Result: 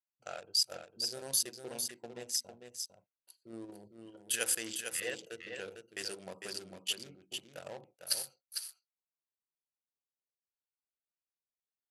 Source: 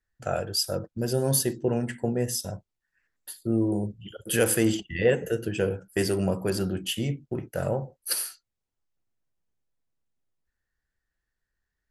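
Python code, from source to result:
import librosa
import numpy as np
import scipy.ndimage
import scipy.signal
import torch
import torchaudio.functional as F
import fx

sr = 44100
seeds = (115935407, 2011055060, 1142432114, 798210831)

p1 = fx.wiener(x, sr, points=25)
p2 = scipy.signal.sosfilt(scipy.signal.butter(2, 6000.0, 'lowpass', fs=sr, output='sos'), p1)
p3 = np.diff(p2, prepend=0.0)
p4 = fx.level_steps(p3, sr, step_db=13)
p5 = p3 + (p4 * 10.0 ** (2.0 / 20.0))
y = p5 + 10.0 ** (-6.5 / 20.0) * np.pad(p5, (int(452 * sr / 1000.0), 0))[:len(p5)]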